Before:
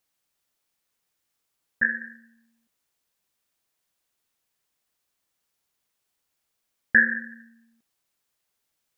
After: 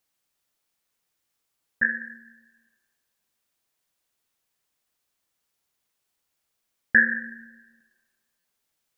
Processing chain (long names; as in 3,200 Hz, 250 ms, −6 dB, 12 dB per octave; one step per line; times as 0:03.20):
comb and all-pass reverb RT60 1.7 s, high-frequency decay 0.5×, pre-delay 70 ms, DRR 20 dB
buffer that repeats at 0:08.39, samples 256, times 8